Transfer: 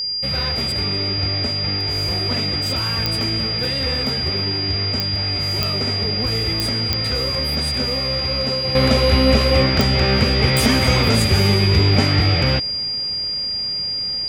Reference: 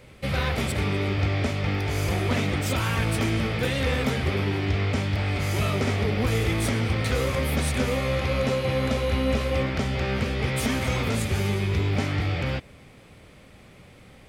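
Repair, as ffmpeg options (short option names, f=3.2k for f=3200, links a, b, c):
-af "adeclick=t=4,bandreject=f=4.8k:w=30,asetnsamples=n=441:p=0,asendcmd='8.75 volume volume -9dB',volume=0dB"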